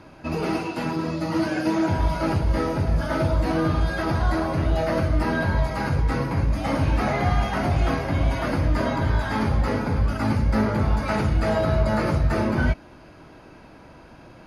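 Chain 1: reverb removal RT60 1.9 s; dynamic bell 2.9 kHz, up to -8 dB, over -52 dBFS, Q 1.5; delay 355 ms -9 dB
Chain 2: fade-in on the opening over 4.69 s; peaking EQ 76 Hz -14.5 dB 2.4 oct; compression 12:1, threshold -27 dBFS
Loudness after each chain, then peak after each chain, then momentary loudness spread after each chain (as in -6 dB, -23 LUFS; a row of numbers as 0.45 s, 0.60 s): -26.0 LUFS, -32.0 LUFS; -11.0 dBFS, -17.0 dBFS; 4 LU, 17 LU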